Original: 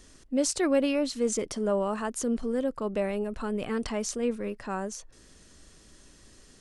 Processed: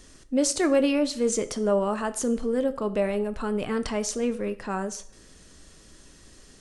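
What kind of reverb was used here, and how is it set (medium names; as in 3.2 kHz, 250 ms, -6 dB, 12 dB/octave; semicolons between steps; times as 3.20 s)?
plate-style reverb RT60 0.54 s, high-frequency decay 0.9×, DRR 11 dB; trim +3 dB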